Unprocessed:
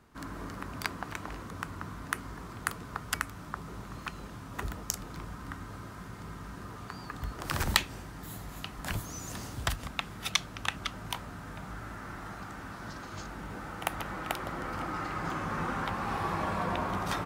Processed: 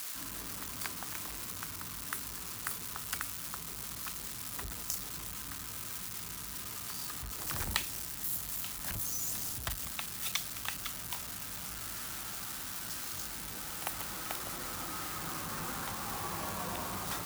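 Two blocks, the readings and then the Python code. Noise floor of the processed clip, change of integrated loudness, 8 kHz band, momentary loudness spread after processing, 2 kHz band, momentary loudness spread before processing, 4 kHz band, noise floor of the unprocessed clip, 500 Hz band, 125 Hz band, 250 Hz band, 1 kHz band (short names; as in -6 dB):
-43 dBFS, -0.5 dB, +4.5 dB, 5 LU, -6.0 dB, 11 LU, -2.5 dB, -45 dBFS, -7.5 dB, -8.0 dB, -8.0 dB, -7.0 dB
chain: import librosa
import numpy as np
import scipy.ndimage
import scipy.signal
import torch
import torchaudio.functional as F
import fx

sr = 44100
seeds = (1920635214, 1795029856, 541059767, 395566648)

y = x + 0.5 * 10.0 ** (-21.0 / 20.0) * np.diff(np.sign(x), prepend=np.sign(x[:1]))
y = y * 10.0 ** (-8.0 / 20.0)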